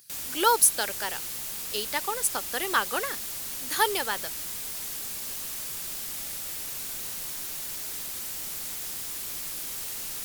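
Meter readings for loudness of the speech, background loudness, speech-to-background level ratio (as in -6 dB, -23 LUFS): -26.5 LUFS, -32.0 LUFS, 5.5 dB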